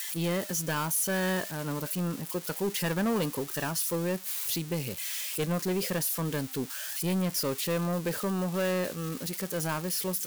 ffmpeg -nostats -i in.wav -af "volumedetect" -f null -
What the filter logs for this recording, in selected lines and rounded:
mean_volume: -30.9 dB
max_volume: -23.1 dB